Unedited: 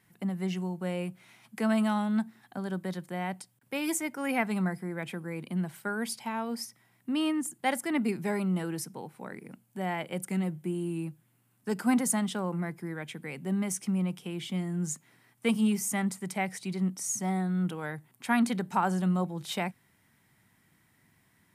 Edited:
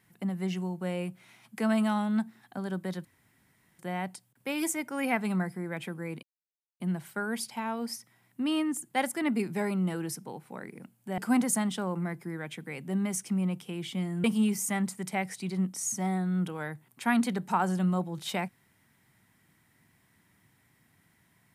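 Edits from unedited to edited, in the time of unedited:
3.05 s: insert room tone 0.74 s
5.49 s: insert silence 0.57 s
9.87–11.75 s: delete
14.81–15.47 s: delete

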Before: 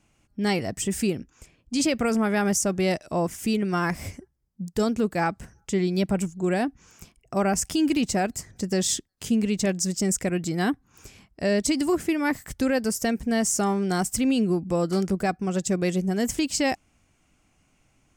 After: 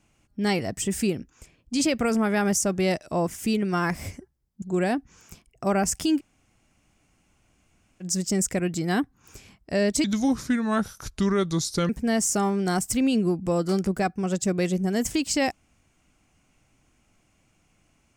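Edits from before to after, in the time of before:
4.62–6.32 s: delete
7.88–9.73 s: room tone, crossfade 0.06 s
11.74–13.13 s: speed 75%

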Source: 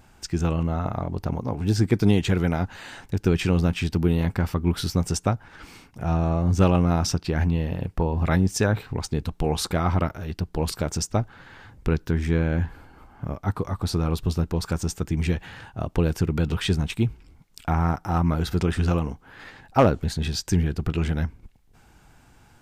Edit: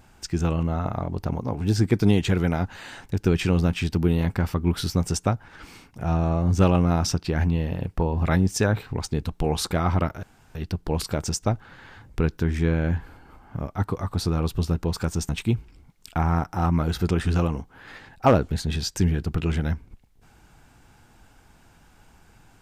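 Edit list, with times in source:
10.23 s: insert room tone 0.32 s
14.97–16.81 s: delete

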